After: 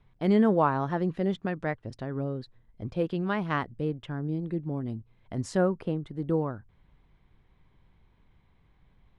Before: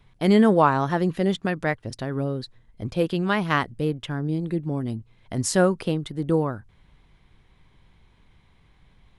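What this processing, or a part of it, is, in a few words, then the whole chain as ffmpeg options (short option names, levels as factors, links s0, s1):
through cloth: -filter_complex "[0:a]lowpass=8200,highshelf=f=2800:g=-11,asettb=1/sr,asplit=3[s0][s1][s2];[s0]atrim=end=5.574[s3];[s1]atrim=start=5.57:end=6.11,asetpts=PTS-STARTPTS,afade=t=in:d=0.004:c=qsin,afade=t=out:st=0.536:d=0.004:c=qsin,equalizer=f=4900:t=o:w=2.1:g=-6[s4];[s2]atrim=start=6.106[s5];[s3][s4]acrossfade=d=0.004:c1=hsin:c2=qsin[s6];[s6][s5]acrossfade=d=0.004:c1=qsin:c2=hsin,volume=0.562"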